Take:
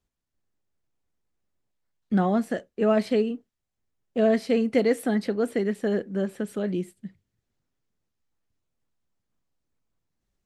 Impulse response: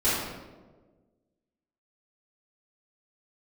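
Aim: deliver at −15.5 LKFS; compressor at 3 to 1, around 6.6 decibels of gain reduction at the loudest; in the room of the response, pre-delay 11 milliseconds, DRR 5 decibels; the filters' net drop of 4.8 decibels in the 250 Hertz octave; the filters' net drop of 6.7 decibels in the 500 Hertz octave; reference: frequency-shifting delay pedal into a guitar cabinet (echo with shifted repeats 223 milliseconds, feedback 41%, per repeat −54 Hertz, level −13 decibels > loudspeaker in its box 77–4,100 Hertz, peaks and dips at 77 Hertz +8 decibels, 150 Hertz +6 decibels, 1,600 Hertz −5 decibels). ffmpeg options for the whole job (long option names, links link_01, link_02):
-filter_complex "[0:a]equalizer=frequency=250:width_type=o:gain=-5.5,equalizer=frequency=500:width_type=o:gain=-7,acompressor=threshold=-31dB:ratio=3,asplit=2[link_01][link_02];[1:a]atrim=start_sample=2205,adelay=11[link_03];[link_02][link_03]afir=irnorm=-1:irlink=0,volume=-19dB[link_04];[link_01][link_04]amix=inputs=2:normalize=0,asplit=5[link_05][link_06][link_07][link_08][link_09];[link_06]adelay=223,afreqshift=-54,volume=-13dB[link_10];[link_07]adelay=446,afreqshift=-108,volume=-20.7dB[link_11];[link_08]adelay=669,afreqshift=-162,volume=-28.5dB[link_12];[link_09]adelay=892,afreqshift=-216,volume=-36.2dB[link_13];[link_05][link_10][link_11][link_12][link_13]amix=inputs=5:normalize=0,highpass=77,equalizer=frequency=77:width_type=q:width=4:gain=8,equalizer=frequency=150:width_type=q:width=4:gain=6,equalizer=frequency=1600:width_type=q:width=4:gain=-5,lowpass=frequency=4100:width=0.5412,lowpass=frequency=4100:width=1.3066,volume=18dB"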